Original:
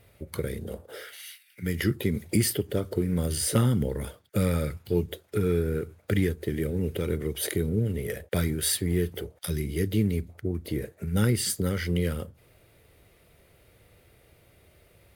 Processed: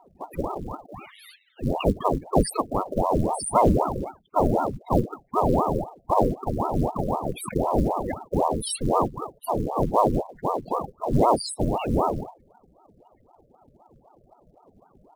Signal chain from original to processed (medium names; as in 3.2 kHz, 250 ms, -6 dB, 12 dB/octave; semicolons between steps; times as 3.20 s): loudest bins only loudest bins 8; short-mantissa float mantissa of 4-bit; ring modulator with a swept carrier 450 Hz, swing 90%, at 3.9 Hz; trim +7.5 dB